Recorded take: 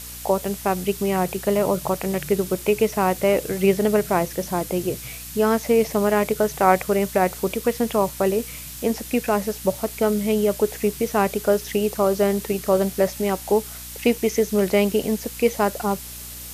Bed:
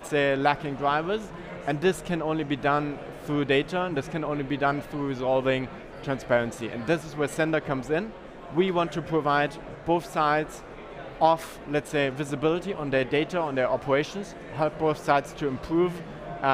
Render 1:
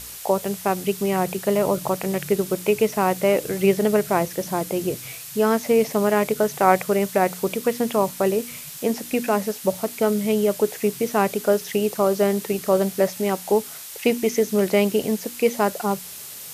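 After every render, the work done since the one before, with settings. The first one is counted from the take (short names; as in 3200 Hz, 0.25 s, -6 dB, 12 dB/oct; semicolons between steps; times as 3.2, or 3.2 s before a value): de-hum 60 Hz, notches 5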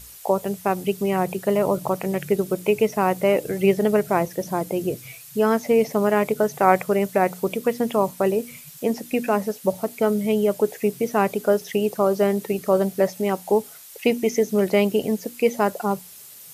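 denoiser 9 dB, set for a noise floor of -37 dBFS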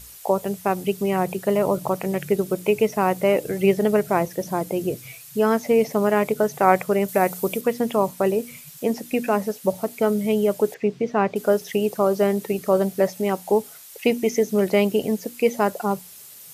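7.08–7.61 high shelf 7200 Hz +9.5 dB; 10.74–11.36 air absorption 160 m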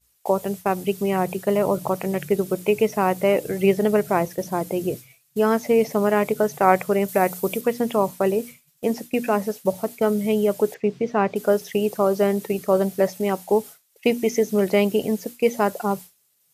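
expander -29 dBFS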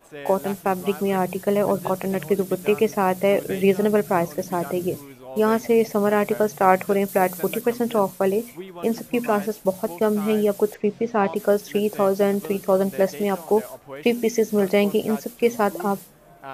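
add bed -13.5 dB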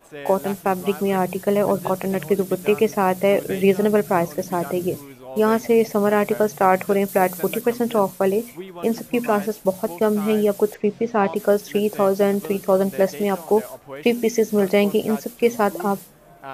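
gain +1.5 dB; limiter -3 dBFS, peak gain reduction 3 dB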